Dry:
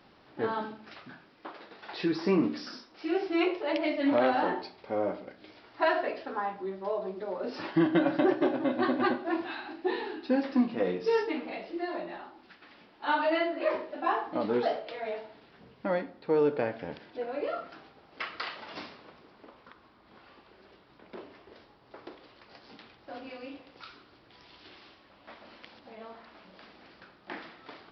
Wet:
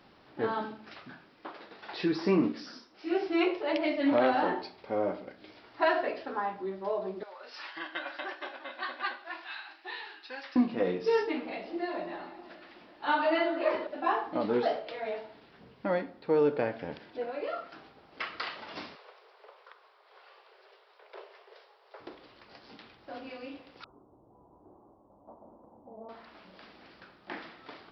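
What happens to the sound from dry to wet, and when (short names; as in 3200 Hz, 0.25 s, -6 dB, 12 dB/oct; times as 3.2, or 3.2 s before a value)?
2.52–3.11 detuned doubles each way 57 cents
7.23–10.56 HPF 1300 Hz
11.46–13.87 echo with dull and thin repeats by turns 0.187 s, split 1300 Hz, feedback 67%, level -10 dB
17.3–17.73 low shelf 360 Hz -8 dB
18.95–22 steep high-pass 400 Hz 72 dB/oct
23.84–26.09 steep low-pass 1000 Hz 48 dB/oct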